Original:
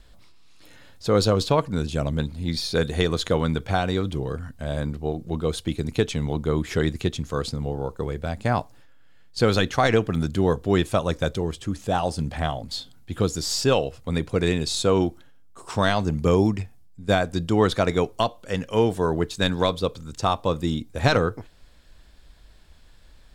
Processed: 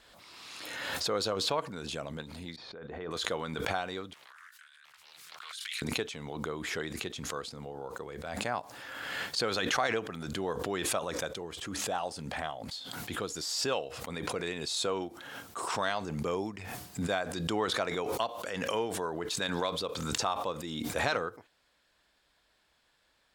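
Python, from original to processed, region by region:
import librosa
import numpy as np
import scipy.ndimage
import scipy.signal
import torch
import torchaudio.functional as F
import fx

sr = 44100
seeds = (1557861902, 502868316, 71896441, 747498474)

y = fx.chain(x, sr, fx.lowpass(hz=1400.0, slope=12),
    fx.level_steps(step_db=16), at=(2.56, 3.11))
y = fx.chain(y, sr, fx.cheby2_highpass(hz=690.0, order=4, stop_db=40),
    fx.over_compress(threshold_db=-49.0, ratio=-1.0),
    fx.doppler_dist(depth_ms=0.98), at=(4.13, 5.82))
y = fx.highpass(y, sr, hz=1200.0, slope=6)
y = fx.high_shelf(y, sr, hz=2300.0, db=-8.0)
y = fx.pre_swell(y, sr, db_per_s=28.0)
y = y * librosa.db_to_amplitude(-3.5)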